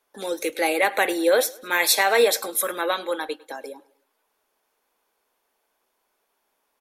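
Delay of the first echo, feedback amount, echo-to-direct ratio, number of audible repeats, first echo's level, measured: 0.103 s, 47%, -21.5 dB, 2, -22.5 dB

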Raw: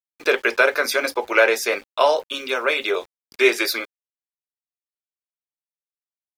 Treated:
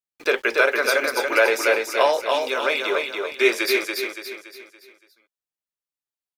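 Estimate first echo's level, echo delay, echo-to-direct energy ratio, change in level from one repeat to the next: -4.0 dB, 0.284 s, -3.0 dB, -7.5 dB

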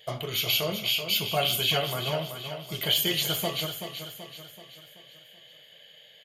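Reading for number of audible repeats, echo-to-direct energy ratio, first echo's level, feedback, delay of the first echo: 5, -7.5 dB, -8.5 dB, 49%, 0.381 s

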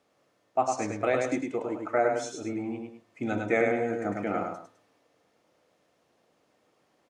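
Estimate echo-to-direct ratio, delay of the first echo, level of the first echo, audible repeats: -3.5 dB, 0.103 s, -4.0 dB, 2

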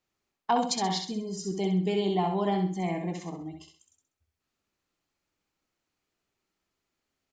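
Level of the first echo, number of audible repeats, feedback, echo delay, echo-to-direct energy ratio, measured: -5.5 dB, 4, 35%, 65 ms, -5.0 dB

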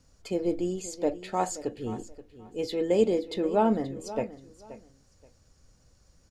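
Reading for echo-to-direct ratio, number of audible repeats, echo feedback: -15.5 dB, 2, 23%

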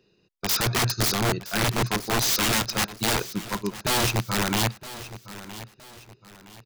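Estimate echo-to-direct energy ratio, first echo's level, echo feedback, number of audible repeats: -15.0 dB, -15.5 dB, 37%, 3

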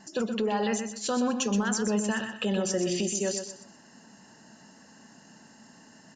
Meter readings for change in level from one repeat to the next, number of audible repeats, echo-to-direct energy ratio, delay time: -11.0 dB, 3, -7.5 dB, 0.124 s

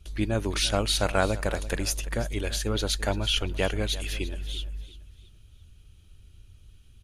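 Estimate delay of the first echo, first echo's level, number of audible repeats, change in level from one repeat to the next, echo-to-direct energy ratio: 0.34 s, -16.5 dB, 3, -9.0 dB, -16.0 dB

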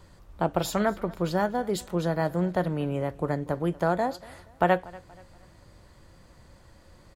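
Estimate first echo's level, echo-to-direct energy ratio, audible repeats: -22.0 dB, -21.5 dB, 2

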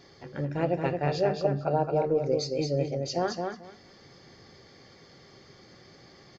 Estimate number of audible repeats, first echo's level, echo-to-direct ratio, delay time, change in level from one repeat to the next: 2, -4.5 dB, -4.5 dB, 0.22 s, -16.0 dB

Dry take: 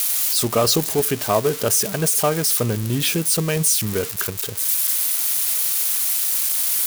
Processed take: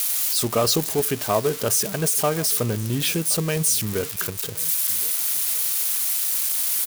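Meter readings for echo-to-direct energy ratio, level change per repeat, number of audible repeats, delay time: -22.0 dB, no steady repeat, 1, 1.07 s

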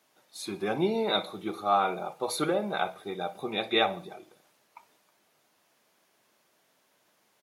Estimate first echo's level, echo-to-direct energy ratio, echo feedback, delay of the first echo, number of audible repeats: -19.5 dB, -18.5 dB, 41%, 61 ms, 3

